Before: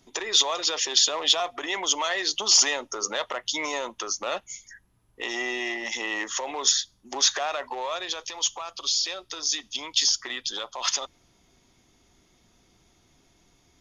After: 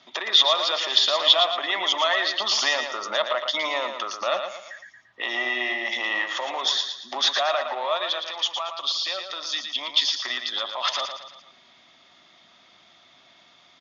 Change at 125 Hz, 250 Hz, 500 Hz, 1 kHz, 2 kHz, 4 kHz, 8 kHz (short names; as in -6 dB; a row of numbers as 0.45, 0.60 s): n/a, -3.0 dB, +5.0 dB, +5.0 dB, +4.5 dB, +3.5 dB, -11.5 dB